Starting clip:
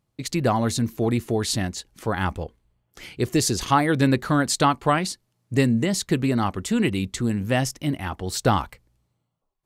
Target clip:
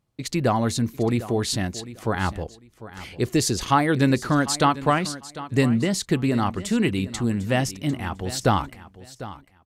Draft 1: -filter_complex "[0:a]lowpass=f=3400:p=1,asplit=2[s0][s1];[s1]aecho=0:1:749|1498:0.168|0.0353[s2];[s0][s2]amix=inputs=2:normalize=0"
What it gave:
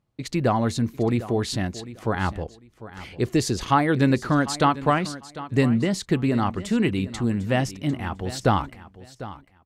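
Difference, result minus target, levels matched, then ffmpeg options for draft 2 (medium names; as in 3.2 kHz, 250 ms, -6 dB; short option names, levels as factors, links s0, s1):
8 kHz band -5.5 dB
-filter_complex "[0:a]lowpass=f=11000:p=1,asplit=2[s0][s1];[s1]aecho=0:1:749|1498:0.168|0.0353[s2];[s0][s2]amix=inputs=2:normalize=0"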